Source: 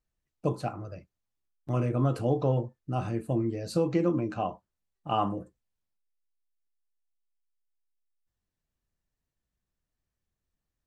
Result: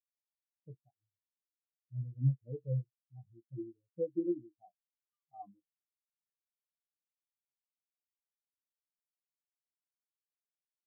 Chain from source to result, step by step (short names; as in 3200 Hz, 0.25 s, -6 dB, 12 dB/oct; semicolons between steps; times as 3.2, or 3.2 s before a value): bands offset in time highs, lows 0.22 s, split 1400 Hz; spectral expander 4:1; gain -5.5 dB